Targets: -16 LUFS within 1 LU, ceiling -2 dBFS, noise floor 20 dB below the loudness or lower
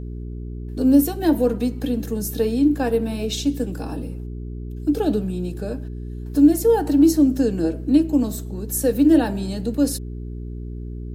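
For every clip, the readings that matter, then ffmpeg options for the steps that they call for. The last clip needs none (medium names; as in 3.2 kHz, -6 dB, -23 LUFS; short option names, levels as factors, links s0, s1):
hum 60 Hz; highest harmonic 420 Hz; hum level -28 dBFS; loudness -20.5 LUFS; peak level -4.5 dBFS; loudness target -16.0 LUFS
-> -af "bandreject=f=60:t=h:w=4,bandreject=f=120:t=h:w=4,bandreject=f=180:t=h:w=4,bandreject=f=240:t=h:w=4,bandreject=f=300:t=h:w=4,bandreject=f=360:t=h:w=4,bandreject=f=420:t=h:w=4"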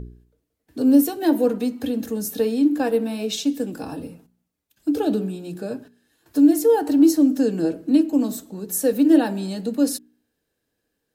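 hum not found; loudness -20.5 LUFS; peak level -5.5 dBFS; loudness target -16.0 LUFS
-> -af "volume=1.68,alimiter=limit=0.794:level=0:latency=1"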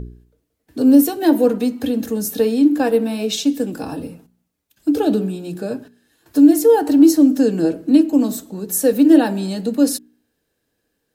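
loudness -16.0 LUFS; peak level -2.0 dBFS; noise floor -73 dBFS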